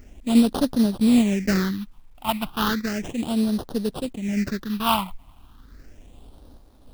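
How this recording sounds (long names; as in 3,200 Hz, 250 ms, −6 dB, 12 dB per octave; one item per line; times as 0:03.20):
sample-and-hold tremolo
aliases and images of a low sample rate 2,200 Hz, jitter 20%
phaser sweep stages 6, 0.34 Hz, lowest notch 430–2,200 Hz
a quantiser's noise floor 12 bits, dither none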